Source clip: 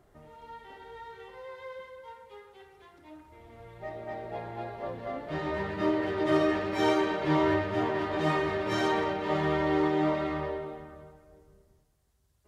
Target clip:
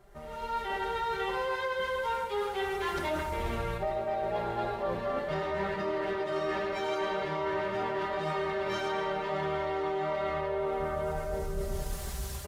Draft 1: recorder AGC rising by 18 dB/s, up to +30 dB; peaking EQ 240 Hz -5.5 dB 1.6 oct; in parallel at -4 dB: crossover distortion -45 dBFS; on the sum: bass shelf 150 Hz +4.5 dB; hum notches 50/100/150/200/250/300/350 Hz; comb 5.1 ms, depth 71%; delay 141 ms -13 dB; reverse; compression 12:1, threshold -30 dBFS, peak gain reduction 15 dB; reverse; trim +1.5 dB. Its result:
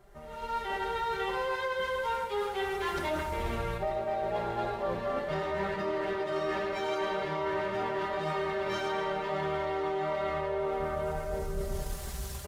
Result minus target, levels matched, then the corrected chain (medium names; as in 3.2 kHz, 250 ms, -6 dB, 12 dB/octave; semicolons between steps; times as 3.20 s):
crossover distortion: distortion +9 dB
recorder AGC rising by 18 dB/s, up to +30 dB; peaking EQ 240 Hz -5.5 dB 1.6 oct; in parallel at -4 dB: crossover distortion -54.5 dBFS; on the sum: bass shelf 150 Hz +4.5 dB; hum notches 50/100/150/200/250/300/350 Hz; comb 5.1 ms, depth 71%; delay 141 ms -13 dB; reverse; compression 12:1, threshold -30 dBFS, peak gain reduction 15 dB; reverse; trim +1.5 dB